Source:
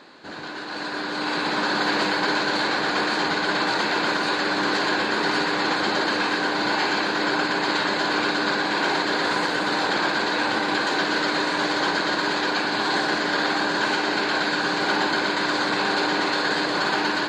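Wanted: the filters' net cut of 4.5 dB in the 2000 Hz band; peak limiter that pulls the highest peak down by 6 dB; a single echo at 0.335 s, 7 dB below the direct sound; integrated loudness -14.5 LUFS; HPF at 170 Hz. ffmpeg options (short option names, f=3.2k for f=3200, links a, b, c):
-af "highpass=170,equalizer=f=2k:t=o:g=-6.5,alimiter=limit=-16.5dB:level=0:latency=1,aecho=1:1:335:0.447,volume=10.5dB"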